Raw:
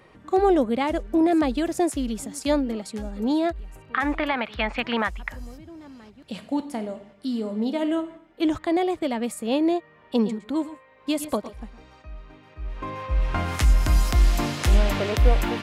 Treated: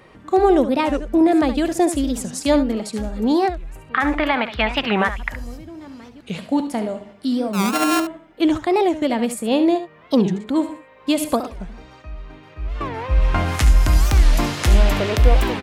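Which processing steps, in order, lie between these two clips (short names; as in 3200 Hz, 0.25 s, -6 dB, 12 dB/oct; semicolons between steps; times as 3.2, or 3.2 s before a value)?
7.55–8 sample sorter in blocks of 32 samples; in parallel at -2 dB: vocal rider within 3 dB; on the sum: echo 71 ms -11.5 dB; record warp 45 rpm, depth 250 cents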